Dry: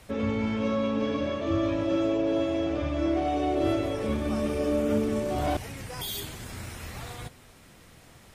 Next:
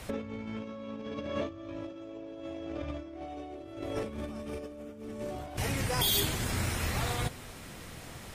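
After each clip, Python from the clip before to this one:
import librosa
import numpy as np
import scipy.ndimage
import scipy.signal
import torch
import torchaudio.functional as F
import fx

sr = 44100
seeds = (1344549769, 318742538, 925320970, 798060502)

y = fx.over_compress(x, sr, threshold_db=-34.0, ratio=-0.5)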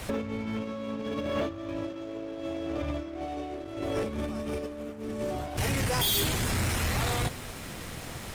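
y = fx.leveller(x, sr, passes=3)
y = F.gain(torch.from_numpy(y), -5.0).numpy()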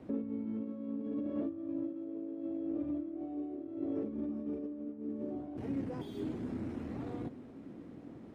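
y = fx.bandpass_q(x, sr, hz=280.0, q=3.2)
y = F.gain(torch.from_numpy(y), 1.0).numpy()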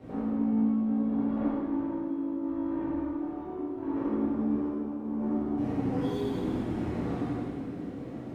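y = 10.0 ** (-36.0 / 20.0) * np.tanh(x / 10.0 ** (-36.0 / 20.0))
y = y + 10.0 ** (-5.5 / 20.0) * np.pad(y, (int(86 * sr / 1000.0), 0))[:len(y)]
y = fx.rev_plate(y, sr, seeds[0], rt60_s=1.9, hf_ratio=1.0, predelay_ms=0, drr_db=-10.0)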